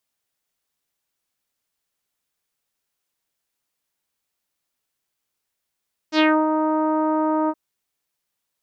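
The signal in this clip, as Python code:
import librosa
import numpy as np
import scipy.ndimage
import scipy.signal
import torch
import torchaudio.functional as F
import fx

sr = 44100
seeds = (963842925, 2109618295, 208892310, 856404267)

y = fx.sub_voice(sr, note=63, wave='saw', cutoff_hz=1100.0, q=2.3, env_oct=2.5, env_s=0.24, attack_ms=71.0, decay_s=0.27, sustain_db=-6.0, release_s=0.05, note_s=1.37, slope=24)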